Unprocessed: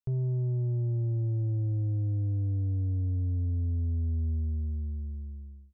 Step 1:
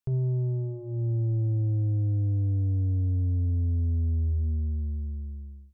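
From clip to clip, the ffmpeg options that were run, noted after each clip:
-af "bandreject=f=60:t=h:w=6,bandreject=f=120:t=h:w=6,bandreject=f=180:t=h:w=6,bandreject=f=240:t=h:w=6,volume=1.5"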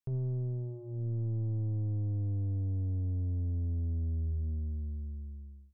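-af "aeval=exprs='0.0841*(cos(1*acos(clip(val(0)/0.0841,-1,1)))-cos(1*PI/2))+0.00944*(cos(2*acos(clip(val(0)/0.0841,-1,1)))-cos(2*PI/2))+0.00119*(cos(5*acos(clip(val(0)/0.0841,-1,1)))-cos(5*PI/2))':c=same,volume=0.447"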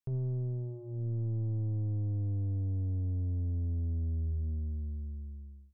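-af anull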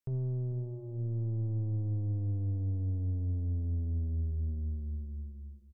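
-af "aecho=1:1:445:0.158"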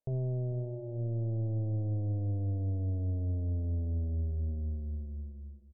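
-af "lowpass=f=640:t=q:w=4.6"

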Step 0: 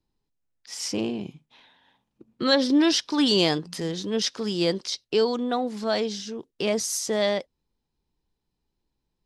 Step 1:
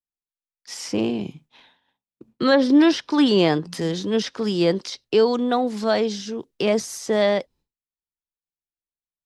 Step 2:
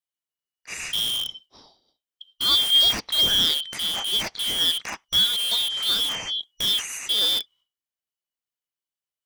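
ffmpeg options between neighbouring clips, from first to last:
-filter_complex "[0:a]acrossover=split=170|2500[s0][s1][s2];[s2]acompressor=threshold=0.0126:ratio=6[s3];[s0][s1][s3]amix=inputs=3:normalize=0,agate=range=0.0224:threshold=0.00251:ratio=3:detection=peak,volume=1.78"
-filter_complex "[0:a]afftfilt=real='real(if(lt(b,272),68*(eq(floor(b/68),0)*2+eq(floor(b/68),1)*3+eq(floor(b/68),2)*0+eq(floor(b/68),3)*1)+mod(b,68),b),0)':imag='imag(if(lt(b,272),68*(eq(floor(b/68),0)*2+eq(floor(b/68),1)*3+eq(floor(b/68),2)*0+eq(floor(b/68),3)*1)+mod(b,68),b),0)':win_size=2048:overlap=0.75,asplit=2[s0][s1];[s1]aeval=exprs='(mod(11.9*val(0)+1,2)-1)/11.9':c=same,volume=0.708[s2];[s0][s2]amix=inputs=2:normalize=0,volume=0.668"

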